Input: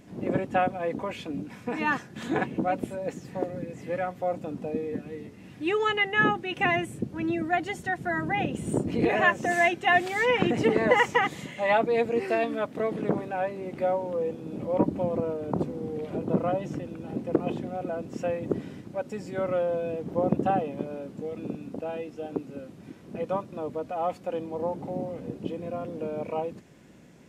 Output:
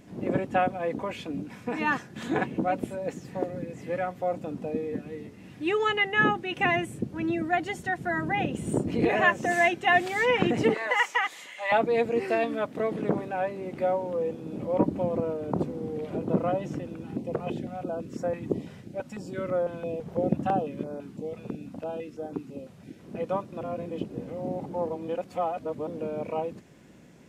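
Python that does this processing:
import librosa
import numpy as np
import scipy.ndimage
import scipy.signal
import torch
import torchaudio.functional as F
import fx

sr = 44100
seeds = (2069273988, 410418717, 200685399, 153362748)

y = fx.highpass(x, sr, hz=940.0, slope=12, at=(10.74, 11.72))
y = fx.filter_held_notch(y, sr, hz=6.0, low_hz=300.0, high_hz=2800.0, at=(17.03, 22.98), fade=0.02)
y = fx.edit(y, sr, fx.reverse_span(start_s=23.61, length_s=2.26), tone=tone)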